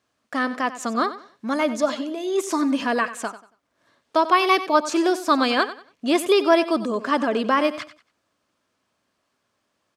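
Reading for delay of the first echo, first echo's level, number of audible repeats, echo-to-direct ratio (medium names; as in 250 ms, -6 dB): 93 ms, -14.0 dB, 2, -13.5 dB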